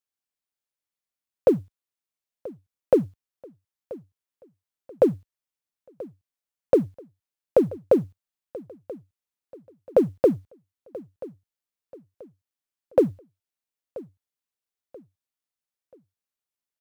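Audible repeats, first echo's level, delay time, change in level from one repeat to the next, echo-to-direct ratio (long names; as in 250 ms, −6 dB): 2, −19.0 dB, 983 ms, −8.5 dB, −18.5 dB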